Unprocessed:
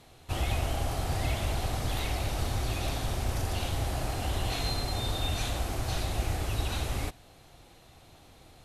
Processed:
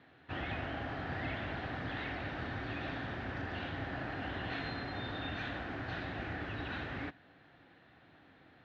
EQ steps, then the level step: cabinet simulation 110–3400 Hz, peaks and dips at 180 Hz +4 dB, 280 Hz +8 dB, 1.5 kHz +8 dB; peaking EQ 1.8 kHz +10.5 dB 0.27 oct; -7.0 dB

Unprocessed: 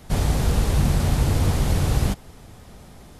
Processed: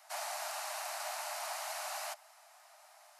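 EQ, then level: Chebyshev high-pass 600 Hz, order 10; peaking EQ 3.4 kHz -8.5 dB 0.29 oct; -6.5 dB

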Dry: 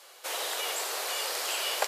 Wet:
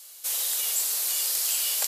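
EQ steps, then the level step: pre-emphasis filter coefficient 0.8; bass shelf 220 Hz +5 dB; treble shelf 2.9 kHz +10.5 dB; 0.0 dB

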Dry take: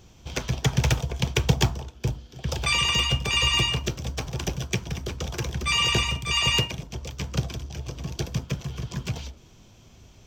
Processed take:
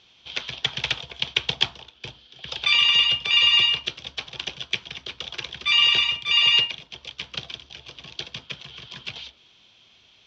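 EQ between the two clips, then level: four-pole ladder low-pass 4.1 kHz, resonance 50%; distance through air 90 m; tilt EQ +4.5 dB/octave; +5.0 dB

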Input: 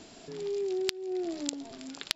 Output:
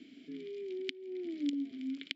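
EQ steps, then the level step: vowel filter i; treble shelf 7.7 kHz -8.5 dB; +7.0 dB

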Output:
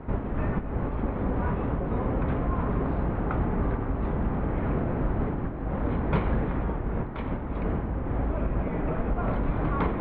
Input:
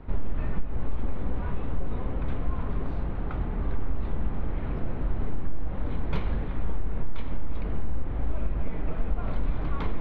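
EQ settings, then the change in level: high-pass 110 Hz 6 dB/octave; low-pass 1.9 kHz 12 dB/octave; +8.5 dB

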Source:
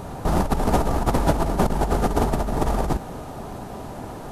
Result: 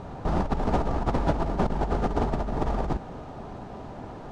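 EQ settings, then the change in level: distance through air 130 m; -4.5 dB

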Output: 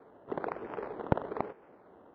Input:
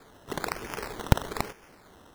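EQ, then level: band-pass filter 510 Hz, Q 0.89; distance through air 350 m; +2.0 dB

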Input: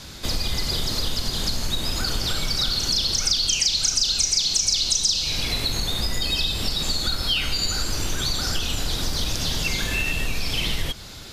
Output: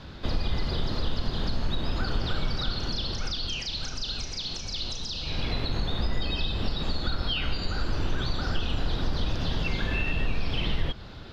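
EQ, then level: distance through air 340 m; peaking EQ 2.2 kHz -5 dB 0.33 oct; 0.0 dB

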